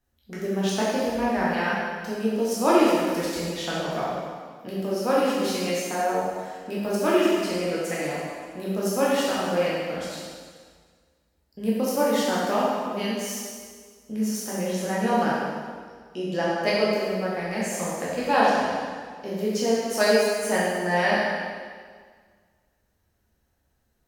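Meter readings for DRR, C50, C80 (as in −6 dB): −7.5 dB, −2.0 dB, 0.0 dB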